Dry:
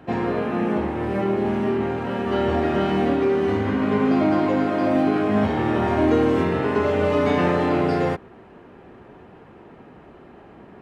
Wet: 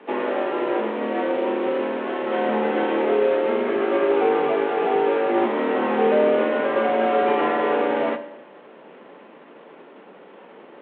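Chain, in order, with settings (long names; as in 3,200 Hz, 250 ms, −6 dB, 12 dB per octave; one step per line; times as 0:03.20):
variable-slope delta modulation 16 kbit/s
feedback delay network reverb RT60 0.86 s, low-frequency decay 1×, high-frequency decay 0.95×, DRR 9 dB
frequency shifter +140 Hz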